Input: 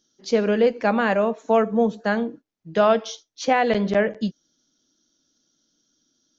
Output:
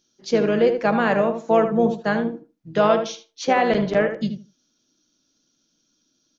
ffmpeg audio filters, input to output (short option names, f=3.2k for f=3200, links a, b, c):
-filter_complex "[0:a]asplit=2[a][b];[b]adelay=77,lowpass=f=1.8k:p=1,volume=-6.5dB,asplit=2[c][d];[d]adelay=77,lowpass=f=1.8k:p=1,volume=0.19,asplit=2[e][f];[f]adelay=77,lowpass=f=1.8k:p=1,volume=0.19[g];[a][c][e][g]amix=inputs=4:normalize=0,asplit=2[h][i];[i]asetrate=33038,aresample=44100,atempo=1.33484,volume=-11dB[j];[h][j]amix=inputs=2:normalize=0"